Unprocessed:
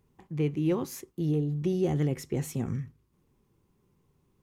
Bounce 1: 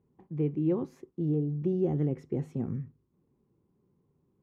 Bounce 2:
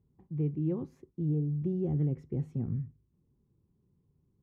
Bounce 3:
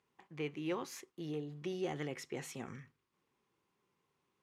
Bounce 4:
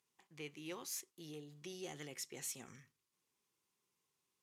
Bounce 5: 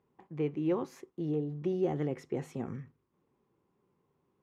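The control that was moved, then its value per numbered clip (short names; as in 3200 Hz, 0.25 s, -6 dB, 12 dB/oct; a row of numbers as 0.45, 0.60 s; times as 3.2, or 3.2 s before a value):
band-pass, frequency: 270, 100, 2100, 6500, 730 Hz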